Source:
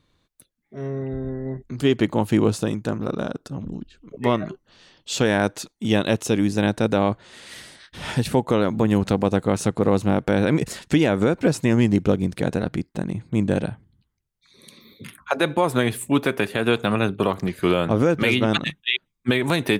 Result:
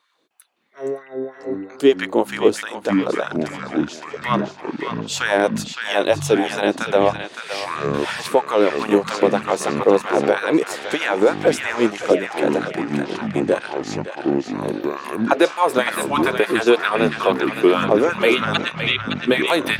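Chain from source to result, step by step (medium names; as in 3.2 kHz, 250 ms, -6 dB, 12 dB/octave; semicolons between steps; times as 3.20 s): LFO high-pass sine 3.1 Hz 340–1500 Hz; ever faster or slower copies 307 ms, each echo -6 st, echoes 3, each echo -6 dB; on a send: band-passed feedback delay 564 ms, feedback 55%, band-pass 2.4 kHz, level -5 dB; on the sum: trim +1.5 dB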